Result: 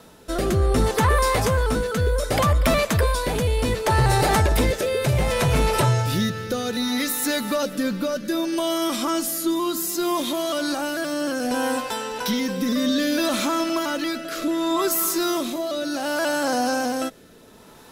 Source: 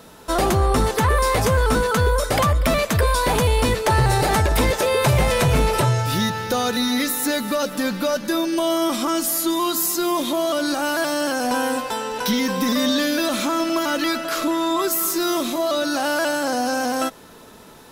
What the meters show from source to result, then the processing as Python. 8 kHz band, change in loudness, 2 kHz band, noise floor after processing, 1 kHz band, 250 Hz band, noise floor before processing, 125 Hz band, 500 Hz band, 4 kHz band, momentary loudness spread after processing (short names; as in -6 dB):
-2.5 dB, -2.0 dB, -3.0 dB, -48 dBFS, -3.0 dB, -1.5 dB, -44 dBFS, -1.5 dB, -2.0 dB, -3.0 dB, 7 LU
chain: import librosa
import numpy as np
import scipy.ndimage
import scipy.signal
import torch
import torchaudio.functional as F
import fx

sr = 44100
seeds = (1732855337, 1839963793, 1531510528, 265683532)

y = fx.rotary(x, sr, hz=0.65)